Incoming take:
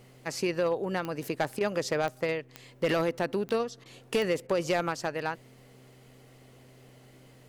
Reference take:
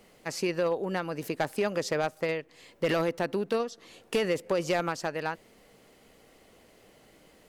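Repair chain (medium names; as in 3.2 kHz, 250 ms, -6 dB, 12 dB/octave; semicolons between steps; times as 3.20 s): de-click; de-hum 128.2 Hz, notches 3; interpolate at 1.59/3.84/4.47 s, 15 ms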